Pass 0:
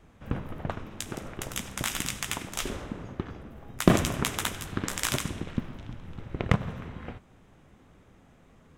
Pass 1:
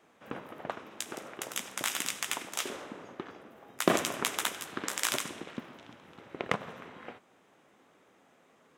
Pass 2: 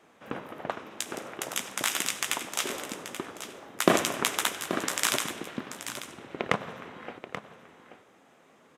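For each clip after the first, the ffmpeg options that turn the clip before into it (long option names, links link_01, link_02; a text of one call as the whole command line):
ffmpeg -i in.wav -af "highpass=360,volume=-1dB" out.wav
ffmpeg -i in.wav -af "aresample=32000,aresample=44100,aecho=1:1:832:0.282,volume=4dB" out.wav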